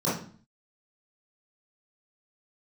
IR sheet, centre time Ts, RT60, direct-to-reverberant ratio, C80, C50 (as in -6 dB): 44 ms, 0.45 s, -11.0 dB, 10.0 dB, 3.5 dB